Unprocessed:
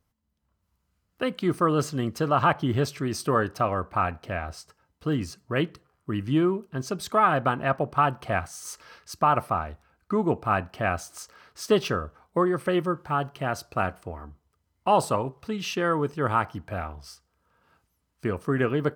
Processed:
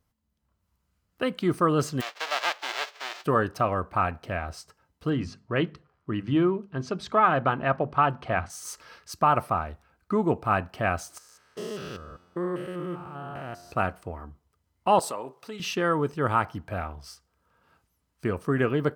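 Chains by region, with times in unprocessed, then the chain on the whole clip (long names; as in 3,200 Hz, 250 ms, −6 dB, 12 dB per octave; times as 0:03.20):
0:02.00–0:03.24: spectral envelope flattened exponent 0.1 + high-pass filter 490 Hz 24 dB per octave + high-frequency loss of the air 210 metres
0:05.10–0:08.50: low-pass filter 4,400 Hz + mains-hum notches 50/100/150/200/250 Hz
0:11.18–0:13.72: spectrum averaged block by block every 200 ms + tuned comb filter 88 Hz, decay 1.9 s, mix 50%
0:14.99–0:15.60: high-pass filter 170 Hz + downward compressor 2.5 to 1, threshold −31 dBFS + bass and treble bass −10 dB, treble +4 dB
whole clip: no processing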